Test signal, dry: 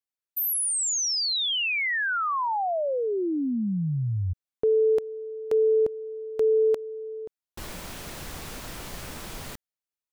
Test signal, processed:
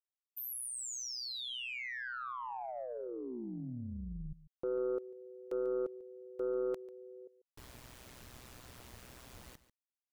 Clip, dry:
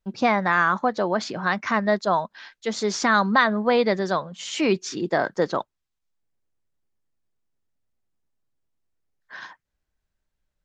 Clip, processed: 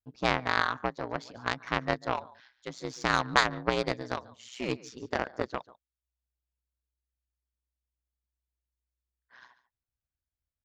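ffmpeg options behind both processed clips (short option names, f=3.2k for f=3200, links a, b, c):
-af "aeval=exprs='val(0)*sin(2*PI*62*n/s)':c=same,aecho=1:1:143:0.168,aeval=exprs='0.501*(cos(1*acos(clip(val(0)/0.501,-1,1)))-cos(1*PI/2))+0.141*(cos(3*acos(clip(val(0)/0.501,-1,1)))-cos(3*PI/2))+0.00316*(cos(4*acos(clip(val(0)/0.501,-1,1)))-cos(4*PI/2))+0.00794*(cos(6*acos(clip(val(0)/0.501,-1,1)))-cos(6*PI/2))+0.00316*(cos(8*acos(clip(val(0)/0.501,-1,1)))-cos(8*PI/2))':c=same,volume=3dB"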